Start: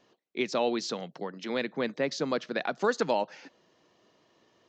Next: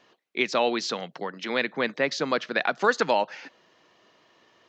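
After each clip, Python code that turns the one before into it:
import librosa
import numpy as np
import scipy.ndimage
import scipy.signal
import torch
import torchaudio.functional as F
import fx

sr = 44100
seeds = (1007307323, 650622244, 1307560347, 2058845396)

y = fx.peak_eq(x, sr, hz=1900.0, db=9.0, octaves=2.9)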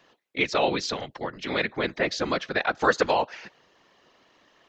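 y = fx.whisperise(x, sr, seeds[0])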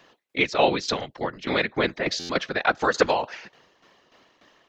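y = fx.tremolo_shape(x, sr, shape='saw_down', hz=3.4, depth_pct=70)
y = fx.buffer_glitch(y, sr, at_s=(2.19,), block=512, repeats=8)
y = y * 10.0 ** (5.5 / 20.0)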